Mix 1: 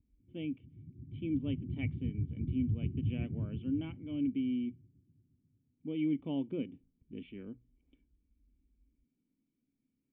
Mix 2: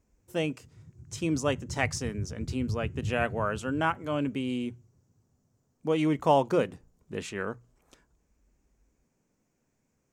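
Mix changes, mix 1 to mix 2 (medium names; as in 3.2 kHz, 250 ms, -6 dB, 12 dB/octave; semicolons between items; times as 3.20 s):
background -11.5 dB; master: remove cascade formant filter i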